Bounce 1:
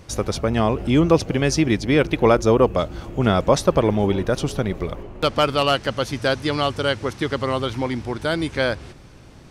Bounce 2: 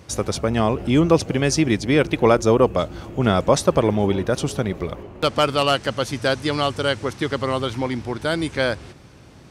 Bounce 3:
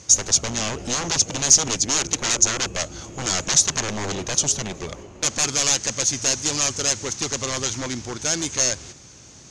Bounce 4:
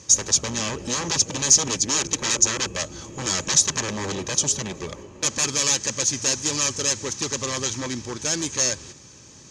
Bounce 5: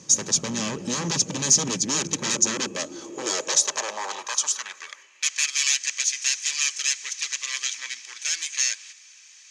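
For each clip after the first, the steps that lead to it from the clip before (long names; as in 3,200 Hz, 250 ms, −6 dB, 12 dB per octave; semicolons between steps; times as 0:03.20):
high-pass filter 63 Hz; dynamic equaliser 8,200 Hz, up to +5 dB, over −46 dBFS, Q 1.7
wave folding −19.5 dBFS; low-pass with resonance 6,600 Hz, resonance Q 8; high-shelf EQ 2,800 Hz +8.5 dB; level −4 dB
notch comb filter 710 Hz
high-pass filter sweep 170 Hz → 2,200 Hz, 0:02.32–0:05.19; level −2.5 dB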